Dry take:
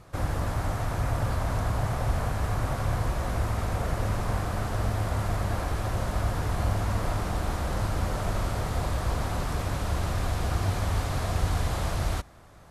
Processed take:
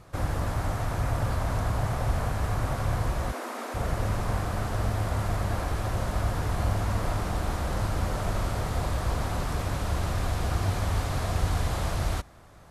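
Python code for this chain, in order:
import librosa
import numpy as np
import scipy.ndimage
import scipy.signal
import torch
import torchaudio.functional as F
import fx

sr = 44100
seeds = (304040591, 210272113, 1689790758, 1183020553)

y = fx.cheby1_highpass(x, sr, hz=220.0, order=10, at=(3.31, 3.74), fade=0.02)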